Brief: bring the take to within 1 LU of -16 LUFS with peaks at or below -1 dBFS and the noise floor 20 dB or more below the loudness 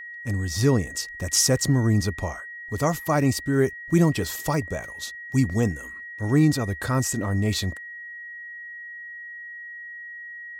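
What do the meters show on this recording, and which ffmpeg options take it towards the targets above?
steady tone 1900 Hz; tone level -36 dBFS; loudness -24.0 LUFS; peak -8.0 dBFS; loudness target -16.0 LUFS
-> -af "bandreject=f=1.9k:w=30"
-af "volume=8dB,alimiter=limit=-1dB:level=0:latency=1"

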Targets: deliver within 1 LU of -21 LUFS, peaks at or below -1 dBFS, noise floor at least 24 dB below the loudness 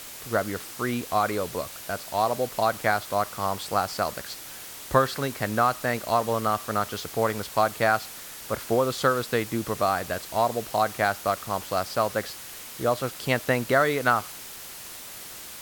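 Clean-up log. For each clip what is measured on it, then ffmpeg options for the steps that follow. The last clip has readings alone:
noise floor -41 dBFS; noise floor target -50 dBFS; loudness -26.0 LUFS; peak -4.5 dBFS; loudness target -21.0 LUFS
-> -af "afftdn=nr=9:nf=-41"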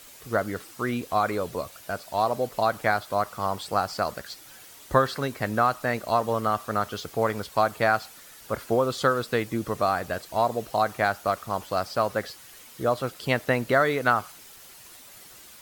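noise floor -48 dBFS; noise floor target -51 dBFS
-> -af "afftdn=nr=6:nf=-48"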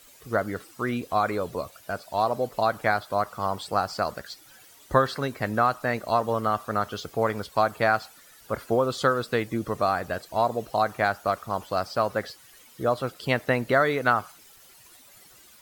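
noise floor -53 dBFS; loudness -26.5 LUFS; peak -4.5 dBFS; loudness target -21.0 LUFS
-> -af "volume=5.5dB,alimiter=limit=-1dB:level=0:latency=1"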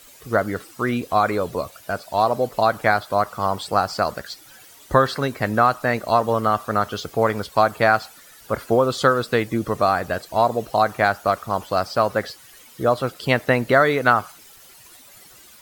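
loudness -21.0 LUFS; peak -1.0 dBFS; noise floor -48 dBFS

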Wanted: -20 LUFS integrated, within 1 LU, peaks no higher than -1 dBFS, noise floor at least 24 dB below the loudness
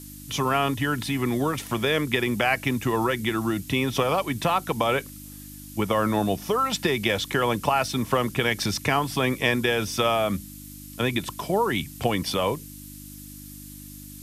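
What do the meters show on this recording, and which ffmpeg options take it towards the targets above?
hum 50 Hz; harmonics up to 300 Hz; hum level -42 dBFS; noise floor -42 dBFS; noise floor target -49 dBFS; loudness -25.0 LUFS; peak -6.5 dBFS; loudness target -20.0 LUFS
-> -af "bandreject=f=50:t=h:w=4,bandreject=f=100:t=h:w=4,bandreject=f=150:t=h:w=4,bandreject=f=200:t=h:w=4,bandreject=f=250:t=h:w=4,bandreject=f=300:t=h:w=4"
-af "afftdn=nr=7:nf=-42"
-af "volume=5dB"

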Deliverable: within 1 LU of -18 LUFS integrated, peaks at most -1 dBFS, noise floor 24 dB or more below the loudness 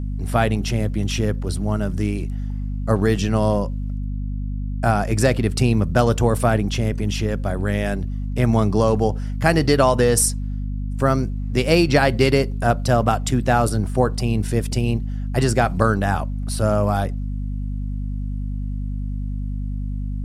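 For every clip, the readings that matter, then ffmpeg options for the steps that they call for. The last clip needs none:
hum 50 Hz; harmonics up to 250 Hz; hum level -23 dBFS; loudness -21.0 LUFS; peak -2.0 dBFS; loudness target -18.0 LUFS
-> -af "bandreject=f=50:t=h:w=6,bandreject=f=100:t=h:w=6,bandreject=f=150:t=h:w=6,bandreject=f=200:t=h:w=6,bandreject=f=250:t=h:w=6"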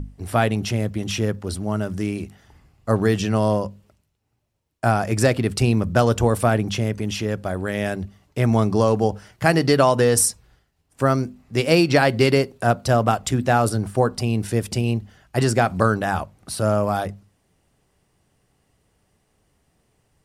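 hum none; loudness -21.0 LUFS; peak -2.0 dBFS; loudness target -18.0 LUFS
-> -af "volume=3dB,alimiter=limit=-1dB:level=0:latency=1"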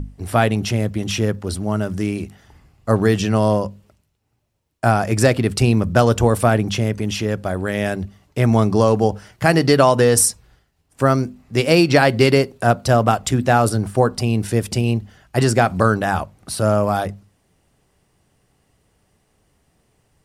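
loudness -18.0 LUFS; peak -1.0 dBFS; noise floor -65 dBFS

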